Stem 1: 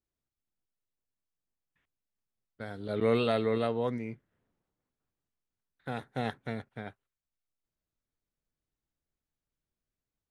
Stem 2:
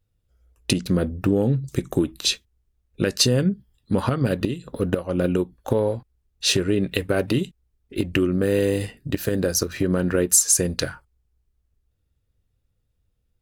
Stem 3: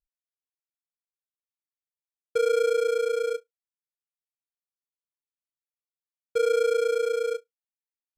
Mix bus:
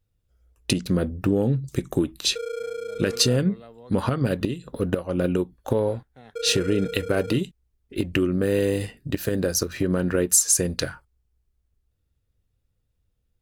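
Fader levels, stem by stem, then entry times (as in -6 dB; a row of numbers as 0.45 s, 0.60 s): -15.5 dB, -1.5 dB, -8.5 dB; 0.00 s, 0.00 s, 0.00 s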